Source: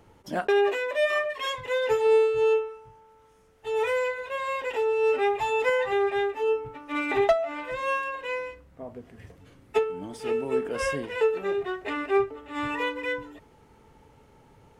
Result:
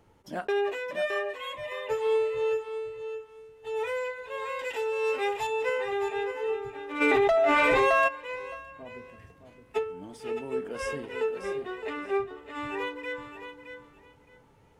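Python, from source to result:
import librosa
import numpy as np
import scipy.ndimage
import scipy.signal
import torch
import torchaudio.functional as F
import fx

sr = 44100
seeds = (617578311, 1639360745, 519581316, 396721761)

y = fx.fixed_phaser(x, sr, hz=1500.0, stages=6, at=(1.37, 1.88), fade=0.02)
y = fx.high_shelf(y, sr, hz=2700.0, db=10.5, at=(4.59, 5.47))
y = fx.echo_feedback(y, sr, ms=616, feedback_pct=19, wet_db=-9)
y = fx.env_flatten(y, sr, amount_pct=100, at=(7.0, 8.07), fade=0.02)
y = F.gain(torch.from_numpy(y), -5.5).numpy()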